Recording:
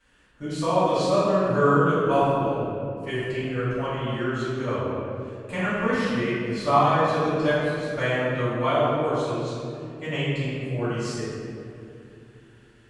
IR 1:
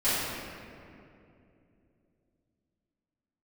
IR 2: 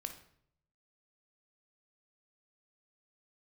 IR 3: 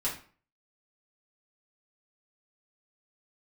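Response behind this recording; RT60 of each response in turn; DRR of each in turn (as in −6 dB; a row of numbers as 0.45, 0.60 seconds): 1; 2.7, 0.65, 0.45 seconds; −15.5, 6.0, −7.5 decibels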